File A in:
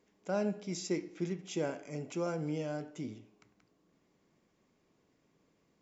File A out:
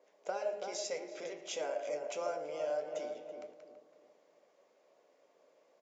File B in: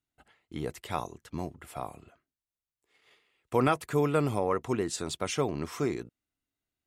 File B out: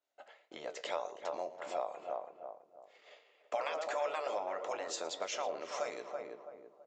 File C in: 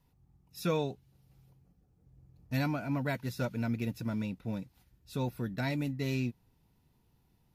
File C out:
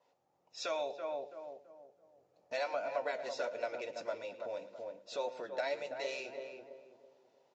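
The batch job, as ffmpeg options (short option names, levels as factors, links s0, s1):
-filter_complex "[0:a]flanger=delay=9.9:depth=3:regen=70:speed=1.7:shape=sinusoidal,asplit=2[s0][s1];[s1]aecho=0:1:112:0.126[s2];[s0][s2]amix=inputs=2:normalize=0,afftfilt=real='re*lt(hypot(re,im),0.0891)':imag='im*lt(hypot(re,im),0.0891)':win_size=1024:overlap=0.75,aresample=16000,aresample=44100,asplit=2[s3][s4];[s4]adelay=330,lowpass=f=970:p=1,volume=0.447,asplit=2[s5][s6];[s6]adelay=330,lowpass=f=970:p=1,volume=0.39,asplit=2[s7][s8];[s8]adelay=330,lowpass=f=970:p=1,volume=0.39,asplit=2[s9][s10];[s10]adelay=330,lowpass=f=970:p=1,volume=0.39,asplit=2[s11][s12];[s12]adelay=330,lowpass=f=970:p=1,volume=0.39[s13];[s5][s7][s9][s11][s13]amix=inputs=5:normalize=0[s14];[s3][s14]amix=inputs=2:normalize=0,acompressor=threshold=0.00562:ratio=5,highpass=f=570:t=q:w=4.9,acontrast=42,adynamicequalizer=threshold=0.00158:dfrequency=1700:dqfactor=0.7:tfrequency=1700:tqfactor=0.7:attack=5:release=100:ratio=0.375:range=1.5:mode=boostabove:tftype=highshelf"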